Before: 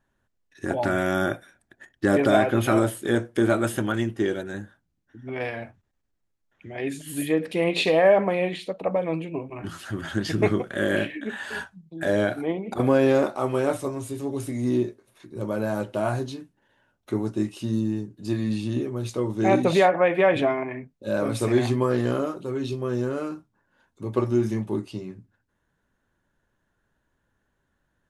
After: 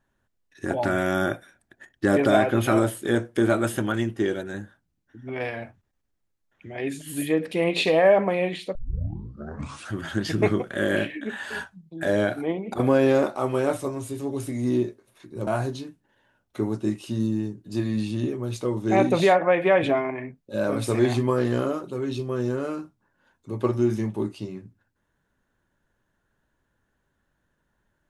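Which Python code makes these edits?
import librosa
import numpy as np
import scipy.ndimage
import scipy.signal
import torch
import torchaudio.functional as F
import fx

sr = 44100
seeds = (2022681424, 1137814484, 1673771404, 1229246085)

y = fx.edit(x, sr, fx.tape_start(start_s=8.75, length_s=1.18),
    fx.cut(start_s=15.47, length_s=0.53), tone=tone)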